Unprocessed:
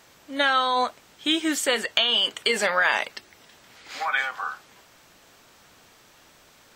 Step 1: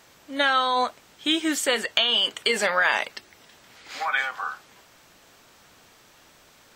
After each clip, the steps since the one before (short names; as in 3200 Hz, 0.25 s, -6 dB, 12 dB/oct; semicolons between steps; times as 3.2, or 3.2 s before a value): nothing audible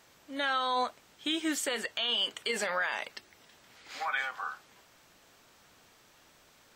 limiter -14.5 dBFS, peak gain reduction 9 dB; gain -6.5 dB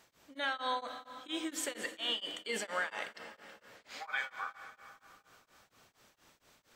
reverb RT60 3.4 s, pre-delay 27 ms, DRR 7.5 dB; beating tremolo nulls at 4.3 Hz; gain -3 dB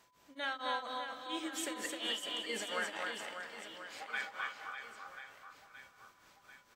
reverse bouncing-ball echo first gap 0.26 s, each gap 1.3×, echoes 5; whine 1000 Hz -68 dBFS; gain -3 dB